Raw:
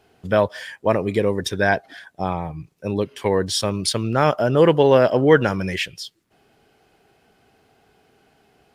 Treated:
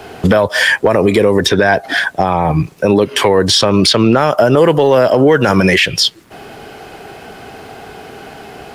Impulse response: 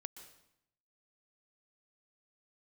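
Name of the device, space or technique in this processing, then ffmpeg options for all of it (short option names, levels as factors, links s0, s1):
mastering chain: -filter_complex "[0:a]equalizer=f=900:t=o:w=2.9:g=4,acrossover=split=180|5700[s0][s1][s2];[s0]acompressor=threshold=0.01:ratio=4[s3];[s1]acompressor=threshold=0.0708:ratio=4[s4];[s2]acompressor=threshold=0.00501:ratio=4[s5];[s3][s4][s5]amix=inputs=3:normalize=0,acompressor=threshold=0.0355:ratio=2,asoftclip=type=tanh:threshold=0.158,asoftclip=type=hard:threshold=0.106,alimiter=level_in=16.8:limit=0.891:release=50:level=0:latency=1,volume=0.891"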